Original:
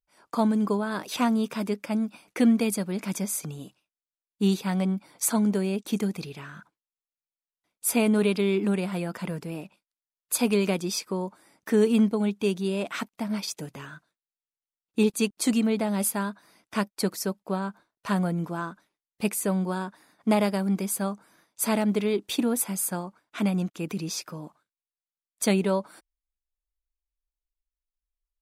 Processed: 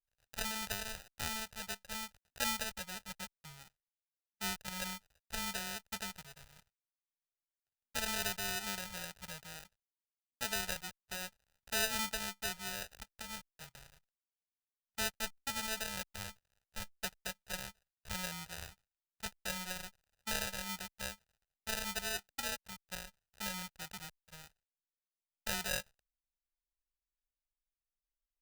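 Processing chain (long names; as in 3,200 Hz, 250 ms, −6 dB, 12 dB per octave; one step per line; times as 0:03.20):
gap after every zero crossing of 0.27 ms
dynamic equaliser 540 Hz, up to +4 dB, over −42 dBFS, Q 3.1
sample-rate reduction 1,100 Hz, jitter 0%
guitar amp tone stack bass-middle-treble 10-0-10
level −3.5 dB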